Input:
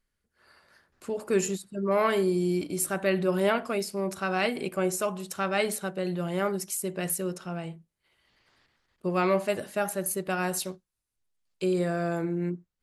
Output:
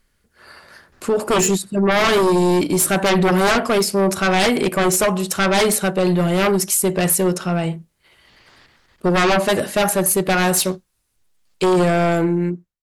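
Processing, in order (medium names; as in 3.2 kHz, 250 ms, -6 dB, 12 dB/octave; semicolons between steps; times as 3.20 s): fade out at the end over 0.73 s; sine folder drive 12 dB, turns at -12 dBFS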